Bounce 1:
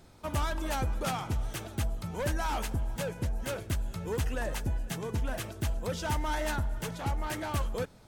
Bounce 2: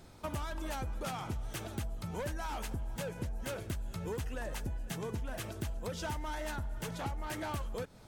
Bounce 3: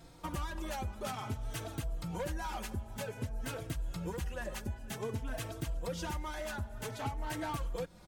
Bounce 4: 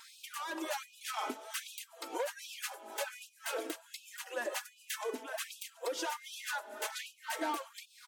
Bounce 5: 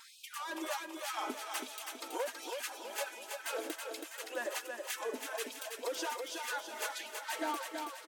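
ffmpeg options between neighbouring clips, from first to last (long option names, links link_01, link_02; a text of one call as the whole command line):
ffmpeg -i in.wav -af "acompressor=threshold=-36dB:ratio=6,volume=1dB" out.wav
ffmpeg -i in.wav -filter_complex "[0:a]asplit=2[link_01][link_02];[link_02]adelay=3.9,afreqshift=0.53[link_03];[link_01][link_03]amix=inputs=2:normalize=1,volume=3dB" out.wav
ffmpeg -i in.wav -af "acompressor=threshold=-40dB:ratio=6,afftfilt=real='re*gte(b*sr/1024,240*pow(2500/240,0.5+0.5*sin(2*PI*1.3*pts/sr)))':imag='im*gte(b*sr/1024,240*pow(2500/240,0.5+0.5*sin(2*PI*1.3*pts/sr)))':win_size=1024:overlap=0.75,volume=9.5dB" out.wav
ffmpeg -i in.wav -af "aecho=1:1:326|652|978|1304|1630|1956:0.562|0.259|0.119|0.0547|0.0252|0.0116,volume=-1dB" out.wav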